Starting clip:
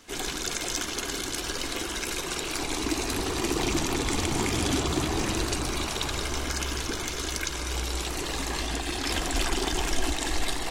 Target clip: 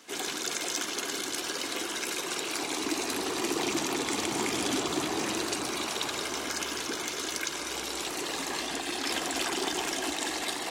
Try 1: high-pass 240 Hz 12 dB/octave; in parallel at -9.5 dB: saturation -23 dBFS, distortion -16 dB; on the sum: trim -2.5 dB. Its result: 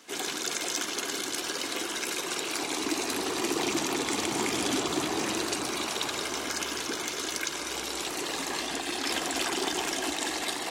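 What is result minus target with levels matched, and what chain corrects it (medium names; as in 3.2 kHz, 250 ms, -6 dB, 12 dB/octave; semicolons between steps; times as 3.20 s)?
saturation: distortion -9 dB
high-pass 240 Hz 12 dB/octave; in parallel at -9.5 dB: saturation -34 dBFS, distortion -7 dB; on the sum: trim -2.5 dB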